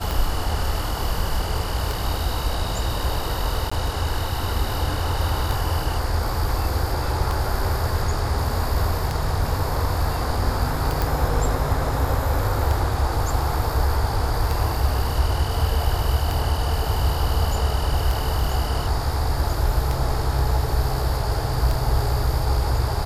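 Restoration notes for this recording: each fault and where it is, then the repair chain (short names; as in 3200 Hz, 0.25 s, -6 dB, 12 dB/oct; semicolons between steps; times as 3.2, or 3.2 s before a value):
tick 33 1/3 rpm
3.7–3.71 gap 15 ms
11.02 pop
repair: de-click; interpolate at 3.7, 15 ms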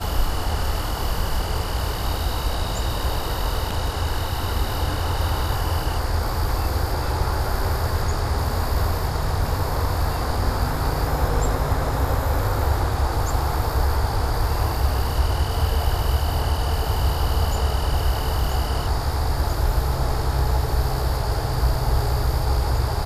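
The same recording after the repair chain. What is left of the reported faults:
none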